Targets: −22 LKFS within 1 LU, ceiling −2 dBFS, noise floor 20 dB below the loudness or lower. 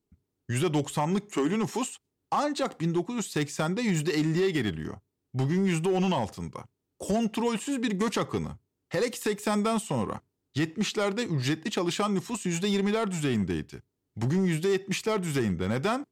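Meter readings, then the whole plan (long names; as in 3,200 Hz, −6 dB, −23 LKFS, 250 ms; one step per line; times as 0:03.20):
share of clipped samples 1.5%; peaks flattened at −20.0 dBFS; integrated loudness −28.5 LKFS; sample peak −20.0 dBFS; target loudness −22.0 LKFS
→ clipped peaks rebuilt −20 dBFS
level +6.5 dB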